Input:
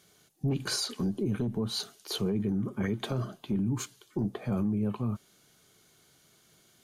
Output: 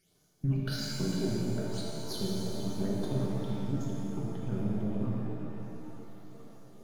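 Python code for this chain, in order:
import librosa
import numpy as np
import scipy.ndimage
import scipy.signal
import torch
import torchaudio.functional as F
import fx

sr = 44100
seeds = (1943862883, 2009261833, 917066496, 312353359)

p1 = np.where(x < 0.0, 10.0 ** (-7.0 / 20.0) * x, x)
p2 = fx.transient(p1, sr, attack_db=6, sustain_db=-12)
p3 = fx.phaser_stages(p2, sr, stages=8, low_hz=290.0, high_hz=3200.0, hz=1.1, feedback_pct=25)
p4 = p3 + fx.echo_stepped(p3, sr, ms=452, hz=2600.0, octaves=-0.7, feedback_pct=70, wet_db=-6.0, dry=0)
p5 = fx.rev_shimmer(p4, sr, seeds[0], rt60_s=2.7, semitones=7, shimmer_db=-8, drr_db=-4.0)
y = p5 * librosa.db_to_amplitude(-6.5)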